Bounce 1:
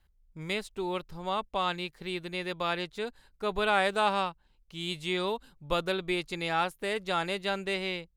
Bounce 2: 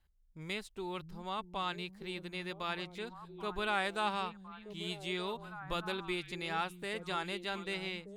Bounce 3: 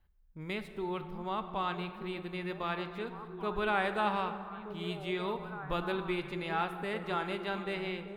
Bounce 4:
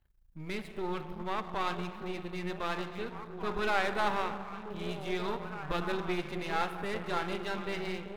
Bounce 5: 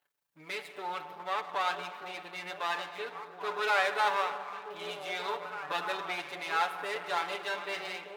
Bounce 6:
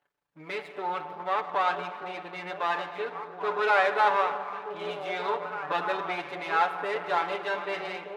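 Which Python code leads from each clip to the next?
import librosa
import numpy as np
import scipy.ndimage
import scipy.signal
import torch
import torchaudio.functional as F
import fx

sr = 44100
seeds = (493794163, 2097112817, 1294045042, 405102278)

y1 = fx.dynamic_eq(x, sr, hz=550.0, q=2.0, threshold_db=-45.0, ratio=4.0, max_db=-6)
y1 = fx.echo_stepped(y1, sr, ms=614, hz=160.0, octaves=1.4, feedback_pct=70, wet_db=-5.0)
y1 = y1 * 10.0 ** (-6.0 / 20.0)
y2 = fx.peak_eq(y1, sr, hz=6900.0, db=-15.0, octaves=1.8)
y2 = fx.rev_plate(y2, sr, seeds[0], rt60_s=2.3, hf_ratio=0.5, predelay_ms=0, drr_db=8.5)
y2 = y2 * 10.0 ** (4.0 / 20.0)
y3 = np.where(y2 < 0.0, 10.0 ** (-12.0 / 20.0) * y2, y2)
y3 = y3 * 10.0 ** (4.5 / 20.0)
y4 = scipy.signal.sosfilt(scipy.signal.butter(2, 570.0, 'highpass', fs=sr, output='sos'), y3)
y4 = y4 + 0.68 * np.pad(y4, (int(6.9 * sr / 1000.0), 0))[:len(y4)]
y4 = y4 * 10.0 ** (2.0 / 20.0)
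y5 = fx.lowpass(y4, sr, hz=1300.0, slope=6)
y5 = y5 * 10.0 ** (7.5 / 20.0)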